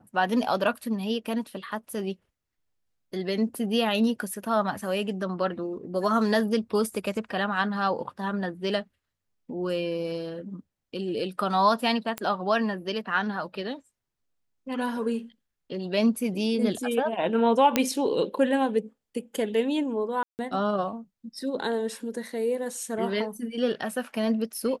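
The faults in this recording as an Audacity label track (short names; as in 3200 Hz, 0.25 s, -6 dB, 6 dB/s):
12.180000	12.180000	pop -14 dBFS
17.760000	17.760000	pop -6 dBFS
20.230000	20.390000	gap 0.159 s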